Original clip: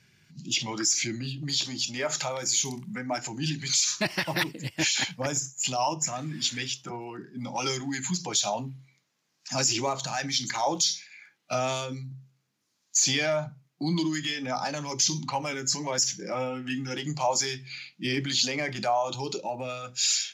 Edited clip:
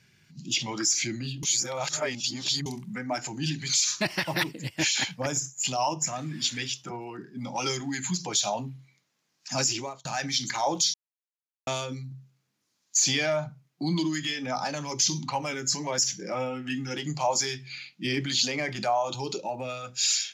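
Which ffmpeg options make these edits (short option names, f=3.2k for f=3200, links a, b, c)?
-filter_complex "[0:a]asplit=6[a][b][c][d][e][f];[a]atrim=end=1.432[g];[b]atrim=start=1.428:end=2.662,asetpts=PTS-STARTPTS,areverse[h];[c]atrim=start=2.658:end=10.05,asetpts=PTS-STARTPTS,afade=t=out:st=6.952:d=0.44[i];[d]atrim=start=10.05:end=10.94,asetpts=PTS-STARTPTS,afade=t=in:d=0.004:c=hsin,afade=t=out:st=0.886:d=0.004:c=hsin[j];[e]atrim=start=10.94:end=11.67,asetpts=PTS-STARTPTS,volume=0[k];[f]atrim=start=11.67,asetpts=PTS-STARTPTS,afade=t=in:d=0.004:c=hsin[l];[g][h]acrossfade=d=0.004:c1=hsin:c2=hsin[m];[i][j][k][l]concat=n=4:v=0:a=1[n];[m][n]acrossfade=d=0.004:c1=hsin:c2=hsin"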